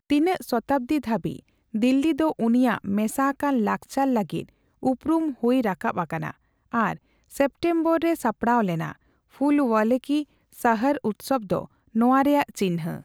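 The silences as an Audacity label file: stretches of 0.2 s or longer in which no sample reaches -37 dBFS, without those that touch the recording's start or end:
1.390000	1.740000	silence
4.440000	4.830000	silence
6.310000	6.730000	silence
6.960000	7.320000	silence
8.920000	9.410000	silence
10.230000	10.530000	silence
11.650000	11.950000	silence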